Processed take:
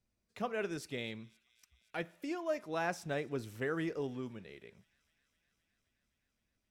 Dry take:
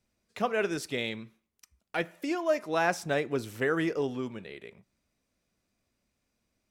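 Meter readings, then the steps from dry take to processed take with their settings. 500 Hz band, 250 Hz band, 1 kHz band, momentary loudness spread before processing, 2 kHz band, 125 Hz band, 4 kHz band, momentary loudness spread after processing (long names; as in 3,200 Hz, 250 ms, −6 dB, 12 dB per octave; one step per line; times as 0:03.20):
−8.0 dB, −7.0 dB, −8.5 dB, 14 LU, −9.0 dB, −5.0 dB, −9.0 dB, 14 LU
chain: low-shelf EQ 160 Hz +7.5 dB
on a send: delay with a high-pass on its return 259 ms, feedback 80%, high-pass 3,000 Hz, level −23.5 dB
on the sum: level −9 dB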